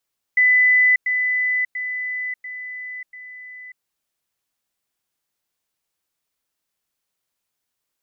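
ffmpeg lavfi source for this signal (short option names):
-f lavfi -i "aevalsrc='pow(10,(-11.5-6*floor(t/0.69))/20)*sin(2*PI*2000*t)*clip(min(mod(t,0.69),0.59-mod(t,0.69))/0.005,0,1)':d=3.45:s=44100"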